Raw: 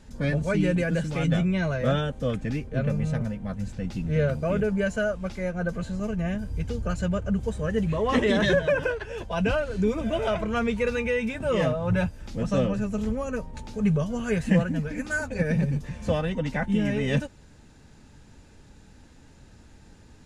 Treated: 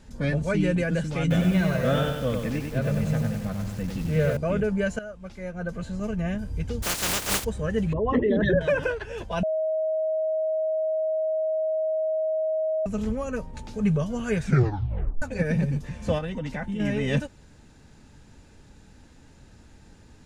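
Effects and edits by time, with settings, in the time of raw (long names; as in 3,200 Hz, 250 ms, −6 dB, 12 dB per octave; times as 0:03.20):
0:01.21–0:04.37: feedback echo at a low word length 96 ms, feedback 55%, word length 7 bits, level −4 dB
0:04.99–0:06.10: fade in, from −14.5 dB
0:06.82–0:07.43: compressing power law on the bin magnitudes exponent 0.18
0:07.93–0:08.61: spectral envelope exaggerated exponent 2
0:09.43–0:12.86: beep over 632 Hz −22.5 dBFS
0:14.37: tape stop 0.85 s
0:16.18–0:16.80: downward compressor, threshold −27 dBFS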